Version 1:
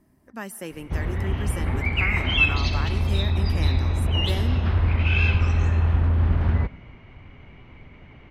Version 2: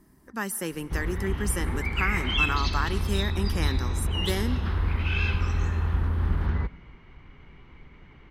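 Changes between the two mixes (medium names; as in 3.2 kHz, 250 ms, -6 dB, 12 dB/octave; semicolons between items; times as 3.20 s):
speech +7.5 dB; master: add fifteen-band graphic EQ 100 Hz -11 dB, 250 Hz -5 dB, 630 Hz -10 dB, 2.5 kHz -6 dB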